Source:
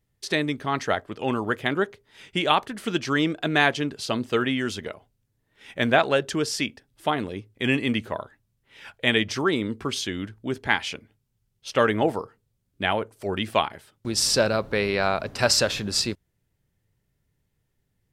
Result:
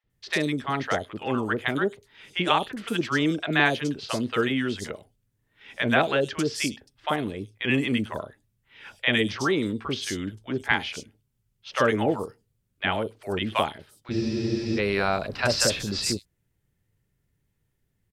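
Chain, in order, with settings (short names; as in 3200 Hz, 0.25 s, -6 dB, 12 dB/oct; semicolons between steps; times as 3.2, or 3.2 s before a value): three bands offset in time mids, lows, highs 40/100 ms, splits 720/4600 Hz; spectral freeze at 14.13, 0.65 s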